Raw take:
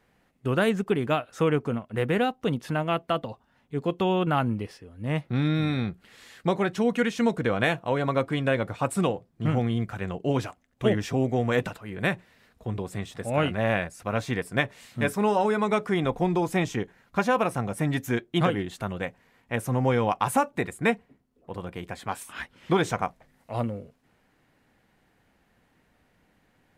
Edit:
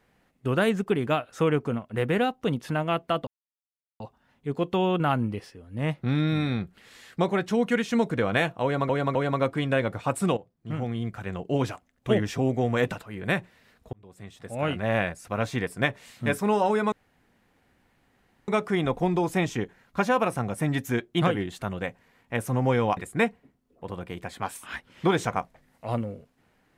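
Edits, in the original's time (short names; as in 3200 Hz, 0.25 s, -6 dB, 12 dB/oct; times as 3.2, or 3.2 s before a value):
3.27 insert silence 0.73 s
7.9–8.16 loop, 3 plays
9.12–10.31 fade in, from -12.5 dB
12.68–13.72 fade in linear
15.67 insert room tone 1.56 s
20.16–20.63 cut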